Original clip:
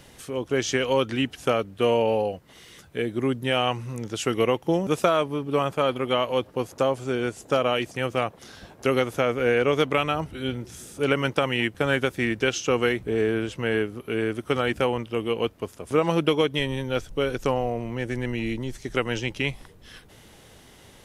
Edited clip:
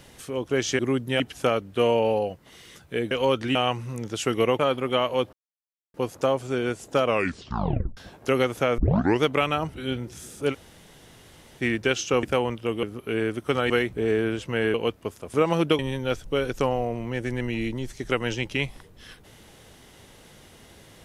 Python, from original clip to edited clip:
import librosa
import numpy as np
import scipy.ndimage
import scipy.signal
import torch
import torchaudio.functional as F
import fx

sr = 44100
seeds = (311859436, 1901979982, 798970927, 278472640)

y = fx.edit(x, sr, fx.swap(start_s=0.79, length_s=0.44, other_s=3.14, other_length_s=0.41),
    fx.cut(start_s=4.59, length_s=1.18),
    fx.insert_silence(at_s=6.51, length_s=0.61),
    fx.tape_stop(start_s=7.62, length_s=0.92),
    fx.tape_start(start_s=9.35, length_s=0.44),
    fx.room_tone_fill(start_s=11.09, length_s=1.08, crossfade_s=0.06),
    fx.swap(start_s=12.8, length_s=1.04, other_s=14.71, other_length_s=0.6),
    fx.cut(start_s=16.36, length_s=0.28), tone=tone)